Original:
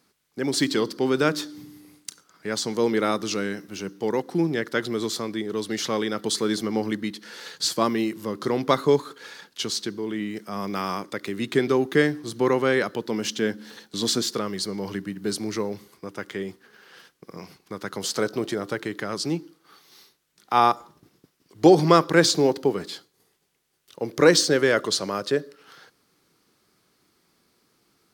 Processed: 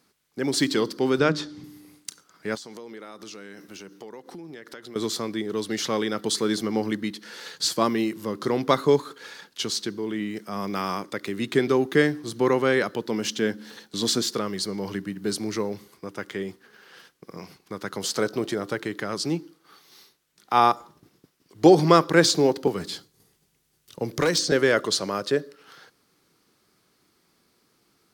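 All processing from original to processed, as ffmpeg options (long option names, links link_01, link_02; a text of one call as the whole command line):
ffmpeg -i in.wav -filter_complex "[0:a]asettb=1/sr,asplit=3[link_01][link_02][link_03];[link_01]atrim=end=1.194[link_04];[link_02]atrim=start=1.19:end=1.64,asetpts=PTS-STARTPTS,afade=type=in:duration=0.004:curve=qsin,afade=type=out:start_time=0.446:duration=0.004:curve=qsin,lowpass=5900,lowshelf=frequency=170:gain=9,bandreject=frequency=50:width_type=h:width=6,bandreject=frequency=100:width_type=h:width=6,bandreject=frequency=150:width_type=h:width=6,bandreject=frequency=200:width_type=h:width=6,bandreject=frequency=250:width_type=h:width=6,bandreject=frequency=300:width_type=h:width=6,bandreject=frequency=350:width_type=h:width=6[link_05];[link_03]atrim=start=1.636[link_06];[link_04][link_05]acrossfade=duration=0.004:curve1=hsin:curve2=qsin[link_07];[link_07][link_06]acrossfade=duration=0.004:curve1=qsin:curve2=hsin,asettb=1/sr,asplit=3[link_08][link_09][link_10];[link_08]atrim=end=2.554[link_11];[link_09]atrim=start=2.55:end=4.96,asetpts=PTS-STARTPTS,afade=type=in:duration=0.004:curve=qsin,afade=type=out:start_time=2.406:duration=0.004:curve=qsin,lowshelf=frequency=190:gain=-9,acompressor=threshold=-37dB:ratio=10:attack=3.2:release=140:knee=1:detection=peak[link_12];[link_10]atrim=start=4.956[link_13];[link_11][link_12]acrossfade=duration=0.004:curve1=hsin:curve2=qsin[link_14];[link_14][link_13]acrossfade=duration=0.004:curve1=qsin:curve2=hsin,asettb=1/sr,asplit=3[link_15][link_16][link_17];[link_15]atrim=end=22.674[link_18];[link_16]atrim=start=22.67:end=24.52,asetpts=PTS-STARTPTS,afade=type=in:duration=0.004:curve=qsin,afade=type=out:start_time=1.846:duration=0.004:curve=qsin,bass=frequency=250:gain=11,treble=frequency=4000:gain=4,acrossover=split=490|7900[link_19][link_20][link_21];[link_19]acompressor=threshold=-28dB:ratio=4[link_22];[link_20]acompressor=threshold=-21dB:ratio=4[link_23];[link_21]acompressor=threshold=-45dB:ratio=4[link_24];[link_22][link_23][link_24]amix=inputs=3:normalize=0,aeval=exprs='0.2*(abs(mod(val(0)/0.2+3,4)-2)-1)':channel_layout=same[link_25];[link_17]atrim=start=24.516[link_26];[link_18][link_25]acrossfade=duration=0.004:curve1=hsin:curve2=qsin[link_27];[link_27][link_26]acrossfade=duration=0.004:curve1=qsin:curve2=hsin" out.wav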